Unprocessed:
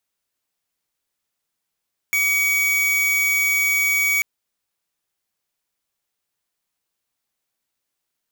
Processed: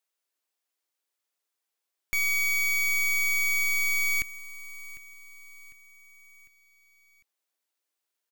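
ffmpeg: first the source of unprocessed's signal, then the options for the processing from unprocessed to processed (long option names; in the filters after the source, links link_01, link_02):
-f lavfi -i "aevalsrc='0.112*(2*lt(mod(2260*t,1),0.5)-1)':duration=2.09:sample_rate=44100"
-af "highpass=frequency=300:width=0.5412,highpass=frequency=300:width=1.3066,aeval=exprs='(tanh(17.8*val(0)+0.8)-tanh(0.8))/17.8':channel_layout=same,aecho=1:1:751|1502|2253|3004:0.141|0.0664|0.0312|0.0147"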